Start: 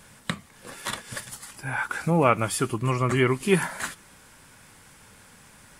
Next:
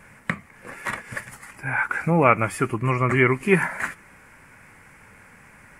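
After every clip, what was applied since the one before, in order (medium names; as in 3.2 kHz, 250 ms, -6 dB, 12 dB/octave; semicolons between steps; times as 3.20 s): resonant high shelf 2.8 kHz -8 dB, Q 3; trim +2 dB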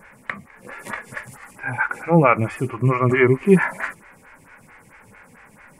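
harmonic-percussive split harmonic +9 dB; lamp-driven phase shifter 4.5 Hz; trim -1 dB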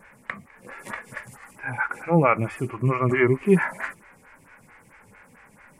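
wow and flutter 23 cents; trim -4 dB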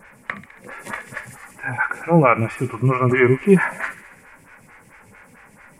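feedback echo behind a high-pass 69 ms, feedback 69%, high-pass 2.4 kHz, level -10.5 dB; trim +4.5 dB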